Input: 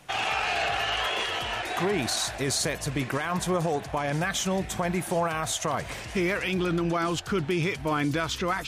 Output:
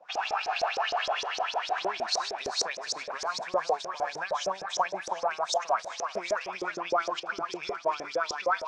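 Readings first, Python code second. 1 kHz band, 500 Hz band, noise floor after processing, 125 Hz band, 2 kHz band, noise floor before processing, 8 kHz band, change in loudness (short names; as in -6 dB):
+1.0 dB, -2.5 dB, -45 dBFS, -27.0 dB, -4.0 dB, -38 dBFS, -6.0 dB, -3.5 dB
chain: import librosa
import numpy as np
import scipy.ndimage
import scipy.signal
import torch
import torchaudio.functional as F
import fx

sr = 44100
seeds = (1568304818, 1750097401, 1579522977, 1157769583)

y = fx.cabinet(x, sr, low_hz=180.0, low_slope=24, high_hz=8000.0, hz=(290.0, 650.0, 960.0, 2000.0, 3100.0, 5300.0), db=(-8, 4, 4, -7, -6, 6))
y = fx.echo_thinned(y, sr, ms=376, feedback_pct=53, hz=420.0, wet_db=-5)
y = fx.filter_lfo_bandpass(y, sr, shape='saw_up', hz=6.5, low_hz=440.0, high_hz=6200.0, q=5.1)
y = y * 10.0 ** (7.0 / 20.0)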